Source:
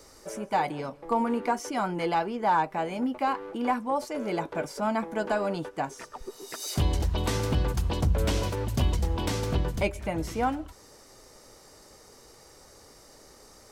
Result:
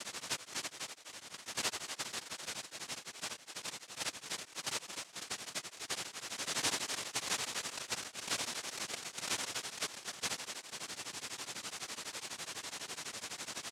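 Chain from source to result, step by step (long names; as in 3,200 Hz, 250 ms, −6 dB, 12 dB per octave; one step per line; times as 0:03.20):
Butterworth high-pass 2,000 Hz
high shelf with overshoot 3,400 Hz +11.5 dB, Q 1.5
downward compressor 2 to 1, threshold −39 dBFS, peak gain reduction 11 dB
cochlear-implant simulation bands 1
on a send: echo with shifted repeats 263 ms, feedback 31%, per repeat +150 Hz, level −8.5 dB
on the sum: tremolo along a rectified sine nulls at 12 Hz
level +3 dB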